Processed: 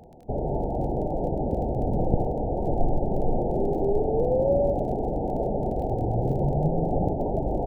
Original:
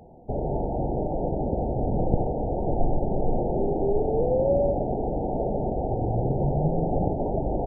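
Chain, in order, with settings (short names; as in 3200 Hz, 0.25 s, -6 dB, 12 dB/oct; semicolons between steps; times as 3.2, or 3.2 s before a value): crackle 26/s -40 dBFS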